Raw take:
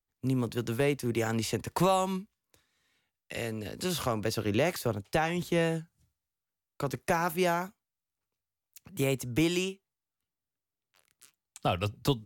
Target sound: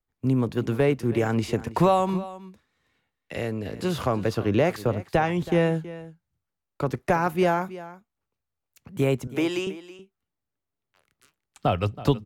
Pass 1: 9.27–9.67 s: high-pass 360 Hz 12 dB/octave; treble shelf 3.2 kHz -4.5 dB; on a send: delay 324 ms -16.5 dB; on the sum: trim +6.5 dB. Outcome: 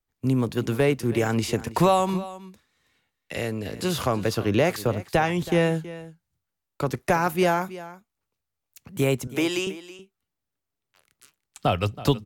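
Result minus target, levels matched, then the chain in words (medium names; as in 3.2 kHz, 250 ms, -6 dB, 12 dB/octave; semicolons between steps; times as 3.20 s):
8 kHz band +7.5 dB
9.27–9.67 s: high-pass 360 Hz 12 dB/octave; treble shelf 3.2 kHz -14 dB; on a send: delay 324 ms -16.5 dB; on the sum: trim +6.5 dB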